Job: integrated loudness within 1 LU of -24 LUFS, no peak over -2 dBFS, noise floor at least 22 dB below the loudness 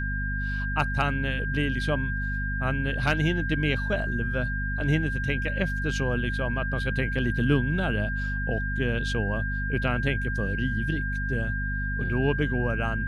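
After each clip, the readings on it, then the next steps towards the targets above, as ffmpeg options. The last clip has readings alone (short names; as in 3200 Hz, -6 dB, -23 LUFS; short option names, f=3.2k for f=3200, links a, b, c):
hum 50 Hz; harmonics up to 250 Hz; hum level -27 dBFS; steady tone 1600 Hz; tone level -31 dBFS; loudness -27.0 LUFS; peak -10.0 dBFS; loudness target -24.0 LUFS
-> -af "bandreject=f=50:t=h:w=4,bandreject=f=100:t=h:w=4,bandreject=f=150:t=h:w=4,bandreject=f=200:t=h:w=4,bandreject=f=250:t=h:w=4"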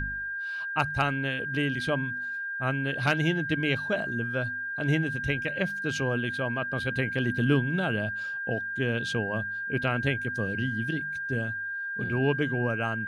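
hum none; steady tone 1600 Hz; tone level -31 dBFS
-> -af "bandreject=f=1.6k:w=30"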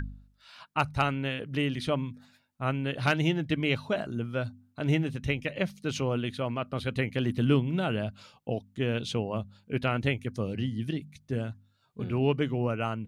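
steady tone none; loudness -30.5 LUFS; peak -11.0 dBFS; loudness target -24.0 LUFS
-> -af "volume=6.5dB"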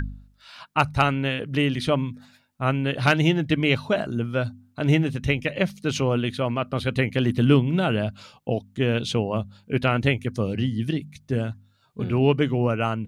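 loudness -24.0 LUFS; peak -4.5 dBFS; noise floor -62 dBFS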